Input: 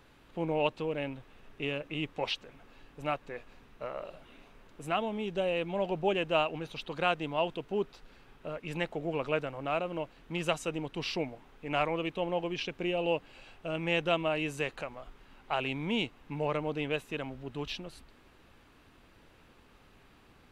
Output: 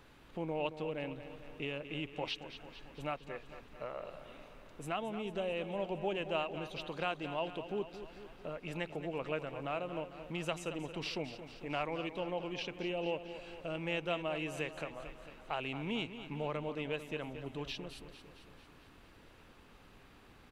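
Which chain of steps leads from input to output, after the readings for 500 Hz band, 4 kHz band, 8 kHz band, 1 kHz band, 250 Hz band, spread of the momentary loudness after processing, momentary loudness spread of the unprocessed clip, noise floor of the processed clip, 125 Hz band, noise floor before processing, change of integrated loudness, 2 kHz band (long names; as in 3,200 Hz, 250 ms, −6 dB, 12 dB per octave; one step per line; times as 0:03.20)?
−6.0 dB, −5.5 dB, −4.5 dB, −6.0 dB, −5.0 dB, 15 LU, 12 LU, −59 dBFS, −5.0 dB, −60 dBFS, −6.0 dB, −6.0 dB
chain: downward compressor 1.5 to 1, threshold −45 dBFS, peak gain reduction 8 dB
repeating echo 224 ms, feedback 60%, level −11.5 dB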